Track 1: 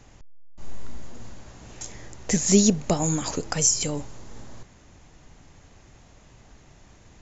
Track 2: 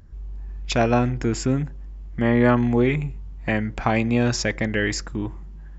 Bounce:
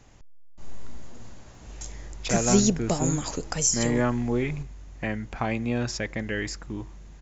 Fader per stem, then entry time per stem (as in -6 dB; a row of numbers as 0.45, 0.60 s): -3.0, -7.0 dB; 0.00, 1.55 s